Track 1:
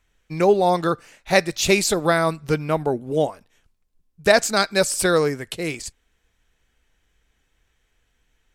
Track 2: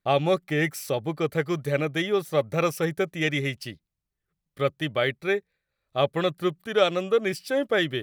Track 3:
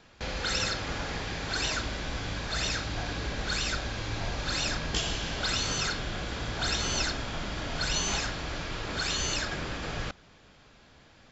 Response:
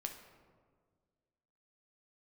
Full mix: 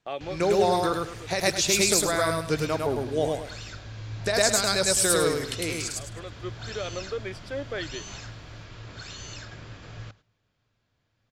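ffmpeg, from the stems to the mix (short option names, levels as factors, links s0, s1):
-filter_complex "[0:a]bass=f=250:g=-1,treble=f=4000:g=10,volume=0.562,asplit=3[s0][s1][s2];[s1]volume=0.631[s3];[1:a]highpass=230,alimiter=limit=0.168:level=0:latency=1:release=55,volume=0.398[s4];[2:a]equalizer=f=110:t=o:w=0.4:g=14,volume=0.282,asplit=2[s5][s6];[s6]volume=0.075[s7];[s2]apad=whole_len=354080[s8];[s4][s8]sidechaincompress=threshold=0.0126:ratio=8:attack=16:release=726[s9];[s0][s9]amix=inputs=2:normalize=0,highpass=140,lowpass=6500,alimiter=limit=0.188:level=0:latency=1:release=68,volume=1[s10];[s3][s7]amix=inputs=2:normalize=0,aecho=0:1:104|208|312|416:1|0.29|0.0841|0.0244[s11];[s5][s10][s11]amix=inputs=3:normalize=0,bandreject=f=820:w=20,agate=range=0.355:threshold=0.00224:ratio=16:detection=peak"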